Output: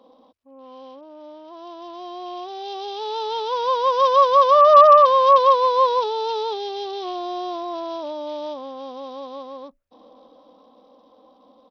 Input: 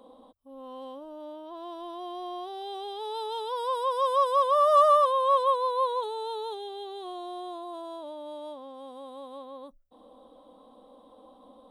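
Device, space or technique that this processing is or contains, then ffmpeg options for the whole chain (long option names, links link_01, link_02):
Bluetooth headset: -af "highpass=frequency=120:poles=1,dynaudnorm=framelen=510:gausssize=11:maxgain=12dB,aresample=16000,aresample=44100" -ar 44100 -c:a sbc -b:a 64k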